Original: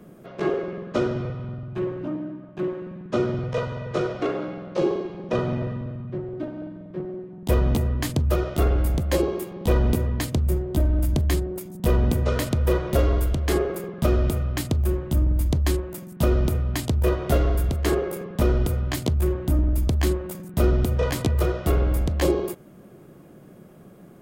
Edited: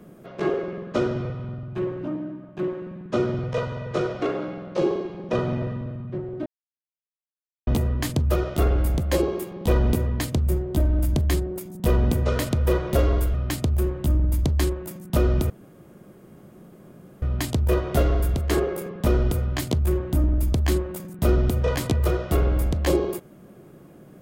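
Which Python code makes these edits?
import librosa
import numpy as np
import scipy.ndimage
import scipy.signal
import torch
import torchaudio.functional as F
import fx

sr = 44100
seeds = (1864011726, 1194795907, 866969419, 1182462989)

y = fx.edit(x, sr, fx.silence(start_s=6.46, length_s=1.21),
    fx.cut(start_s=13.34, length_s=1.07),
    fx.insert_room_tone(at_s=16.57, length_s=1.72), tone=tone)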